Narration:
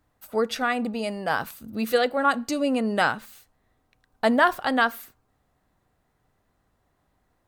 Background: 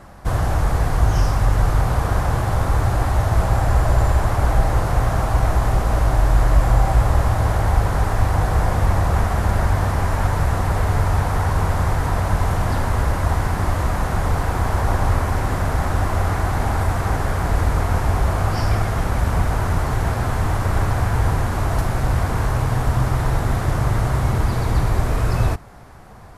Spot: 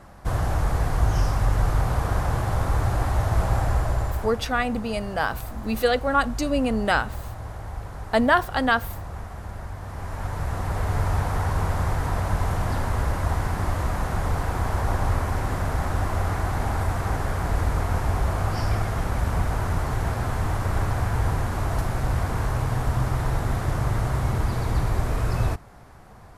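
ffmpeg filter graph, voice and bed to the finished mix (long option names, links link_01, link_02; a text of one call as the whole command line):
ffmpeg -i stem1.wav -i stem2.wav -filter_complex "[0:a]adelay=3900,volume=0.5dB[link_01];[1:a]volume=7.5dB,afade=type=out:start_time=3.58:duration=0.87:silence=0.237137,afade=type=in:start_time=9.81:duration=1.26:silence=0.251189[link_02];[link_01][link_02]amix=inputs=2:normalize=0" out.wav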